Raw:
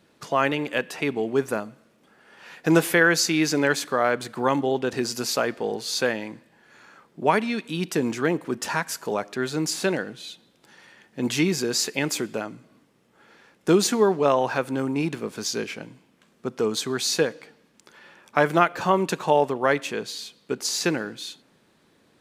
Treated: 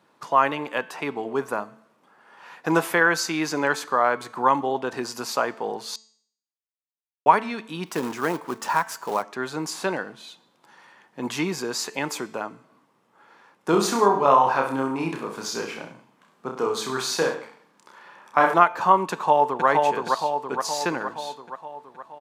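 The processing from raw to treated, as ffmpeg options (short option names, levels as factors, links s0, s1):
-filter_complex "[0:a]asettb=1/sr,asplit=3[s0][s1][s2];[s0]atrim=end=7.864[s3];[s1]atrim=start=7.86:end=9.23,asetpts=PTS-STARTPTS,afade=t=in:d=0.004:c=qsin,afade=t=out:st=1.366:d=0.004:c=qsin,acrusher=bits=3:mode=log:mix=0:aa=0.000001[s4];[s2]atrim=start=9.226[s5];[s3][s4]acrossfade=d=0.004:c1=hsin:c2=qsin[s6];[s6][s5]acrossfade=d=0.004:c1=qsin:c2=hsin,asettb=1/sr,asplit=3[s7][s8][s9];[s7]atrim=end=13.704[s10];[s8]atrim=start=13.7:end=18.54,asetpts=PTS-STARTPTS,afade=t=in:d=0.004:c=qsin,afade=t=out:st=4.836:d=0.004:c=qsin,aecho=1:1:30|63|99.3|139.2|183.2:0.631|0.398|0.251|0.158|0.1,atrim=end_sample=213444[s11];[s9]atrim=start=18.536[s12];[s10][s11]acrossfade=d=0.004:c1=hsin:c2=qsin[s13];[s13][s12]acrossfade=d=0.004:c1=qsin:c2=hsin,asplit=2[s14][s15];[s15]afade=t=in:st=19.12:d=0.01,afade=t=out:st=19.67:d=0.01,aecho=0:1:470|940|1410|1880|2350|2820|3290|3760|4230:0.749894|0.449937|0.269962|0.161977|0.0971863|0.0583118|0.0349871|0.0209922|0.0125953[s16];[s14][s16]amix=inputs=2:normalize=0,asplit=3[s17][s18][s19];[s17]atrim=end=5.96,asetpts=PTS-STARTPTS,afade=t=out:st=5.956:d=0.004:c=hsin[s20];[s18]atrim=start=5.96:end=7.26,asetpts=PTS-STARTPTS,volume=0[s21];[s19]atrim=start=7.26,asetpts=PTS-STARTPTS,afade=t=in:d=0.004:c=hsin[s22];[s20][s21][s22]concat=n=3:v=0:a=1,highpass=120,equalizer=f=1000:t=o:w=1:g=13,bandreject=f=220.4:t=h:w=4,bandreject=f=440.8:t=h:w=4,bandreject=f=661.2:t=h:w=4,bandreject=f=881.6:t=h:w=4,bandreject=f=1102:t=h:w=4,bandreject=f=1322.4:t=h:w=4,bandreject=f=1542.8:t=h:w=4,bandreject=f=1763.2:t=h:w=4,bandreject=f=1983.6:t=h:w=4,bandreject=f=2204:t=h:w=4,bandreject=f=2424.4:t=h:w=4,bandreject=f=2644.8:t=h:w=4,bandreject=f=2865.2:t=h:w=4,bandreject=f=3085.6:t=h:w=4,bandreject=f=3306:t=h:w=4,bandreject=f=3526.4:t=h:w=4,bandreject=f=3746.8:t=h:w=4,bandreject=f=3967.2:t=h:w=4,bandreject=f=4187.6:t=h:w=4,bandreject=f=4408:t=h:w=4,bandreject=f=4628.4:t=h:w=4,bandreject=f=4848.8:t=h:w=4,bandreject=f=5069.2:t=h:w=4,bandreject=f=5289.6:t=h:w=4,bandreject=f=5510:t=h:w=4,bandreject=f=5730.4:t=h:w=4,bandreject=f=5950.8:t=h:w=4,bandreject=f=6171.2:t=h:w=4,bandreject=f=6391.6:t=h:w=4,bandreject=f=6612:t=h:w=4,bandreject=f=6832.4:t=h:w=4,bandreject=f=7052.8:t=h:w=4,bandreject=f=7273.2:t=h:w=4,bandreject=f=7493.6:t=h:w=4,bandreject=f=7714:t=h:w=4,bandreject=f=7934.4:t=h:w=4,bandreject=f=8154.8:t=h:w=4,bandreject=f=8375.2:t=h:w=4,volume=0.562"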